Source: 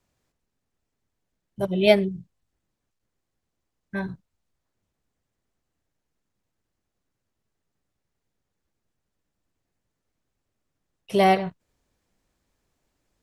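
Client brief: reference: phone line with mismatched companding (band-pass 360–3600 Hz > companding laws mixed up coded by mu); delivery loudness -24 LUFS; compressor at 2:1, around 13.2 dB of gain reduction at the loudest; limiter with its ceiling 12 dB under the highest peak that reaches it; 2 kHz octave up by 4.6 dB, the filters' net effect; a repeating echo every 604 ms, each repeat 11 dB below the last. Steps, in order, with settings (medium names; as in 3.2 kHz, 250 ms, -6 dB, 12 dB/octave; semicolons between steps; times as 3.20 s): peaking EQ 2 kHz +6 dB; compression 2:1, threshold -35 dBFS; peak limiter -28 dBFS; band-pass 360–3600 Hz; feedback delay 604 ms, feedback 28%, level -11 dB; companding laws mixed up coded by mu; trim +18.5 dB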